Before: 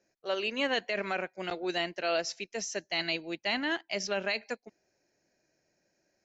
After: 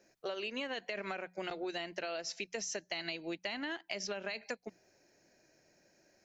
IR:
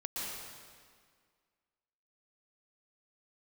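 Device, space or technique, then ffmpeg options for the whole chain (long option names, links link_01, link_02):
serial compression, peaks first: -af "acompressor=threshold=-38dB:ratio=6,acompressor=threshold=-44dB:ratio=3,bandreject=frequency=60:width_type=h:width=6,bandreject=frequency=120:width_type=h:width=6,bandreject=frequency=180:width_type=h:width=6,volume=7dB"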